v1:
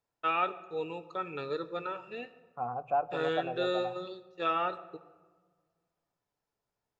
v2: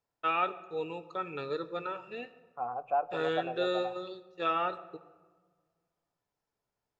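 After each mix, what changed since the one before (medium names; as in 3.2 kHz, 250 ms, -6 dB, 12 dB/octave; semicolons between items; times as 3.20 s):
second voice: add tone controls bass -12 dB, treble -6 dB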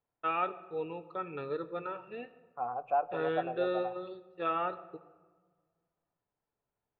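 first voice: add distance through air 380 m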